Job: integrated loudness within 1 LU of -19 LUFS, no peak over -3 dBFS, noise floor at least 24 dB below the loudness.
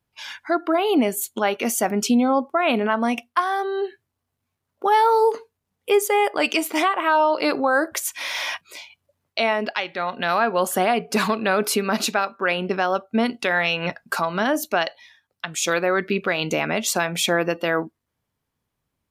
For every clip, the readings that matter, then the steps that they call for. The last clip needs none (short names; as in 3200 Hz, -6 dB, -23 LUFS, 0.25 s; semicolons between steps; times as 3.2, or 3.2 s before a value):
loudness -22.0 LUFS; peak -8.5 dBFS; loudness target -19.0 LUFS
-> gain +3 dB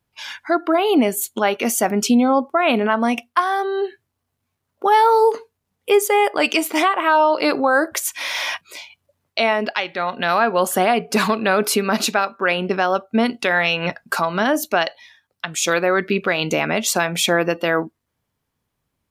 loudness -19.0 LUFS; peak -5.5 dBFS; noise floor -77 dBFS